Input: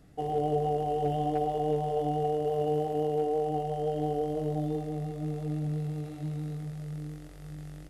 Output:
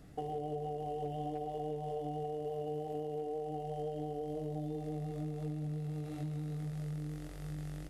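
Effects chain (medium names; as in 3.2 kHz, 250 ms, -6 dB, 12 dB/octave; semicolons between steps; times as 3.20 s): dynamic bell 1.3 kHz, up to -6 dB, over -49 dBFS, Q 1.7; compression 6:1, threshold -38 dBFS, peak gain reduction 13 dB; trim +1.5 dB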